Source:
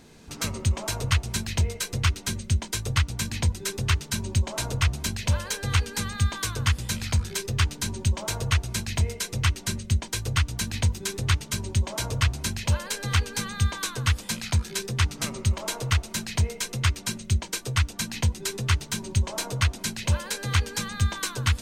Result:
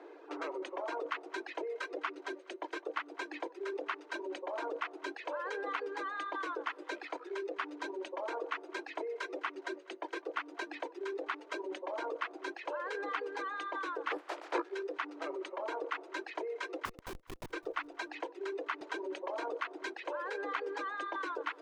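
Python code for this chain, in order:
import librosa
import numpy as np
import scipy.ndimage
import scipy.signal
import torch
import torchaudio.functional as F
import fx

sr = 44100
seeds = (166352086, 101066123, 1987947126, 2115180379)

p1 = fx.spec_clip(x, sr, under_db=29, at=(14.1, 14.61), fade=0.02)
p2 = scipy.signal.sosfilt(scipy.signal.butter(2, 1200.0, 'lowpass', fs=sr, output='sos'), p1)
p3 = fx.dereverb_blind(p2, sr, rt60_s=1.9)
p4 = scipy.signal.sosfilt(scipy.signal.cheby1(8, 1.0, 300.0, 'highpass', fs=sr, output='sos'), p3)
p5 = fx.over_compress(p4, sr, threshold_db=-44.0, ratio=-0.5)
p6 = p4 + (p5 * 10.0 ** (0.0 / 20.0))
p7 = fx.schmitt(p6, sr, flips_db=-37.5, at=(16.85, 17.5))
p8 = fx.echo_feedback(p7, sr, ms=208, feedback_pct=38, wet_db=-21.5)
p9 = fx.band_squash(p8, sr, depth_pct=40, at=(18.81, 19.82))
y = p9 * 10.0 ** (-1.5 / 20.0)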